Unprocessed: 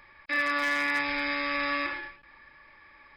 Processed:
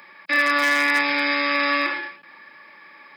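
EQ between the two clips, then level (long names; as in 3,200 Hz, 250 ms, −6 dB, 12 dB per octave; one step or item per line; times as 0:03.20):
Chebyshev high-pass filter 170 Hz, order 4
high-shelf EQ 6,200 Hz +7 dB
+8.5 dB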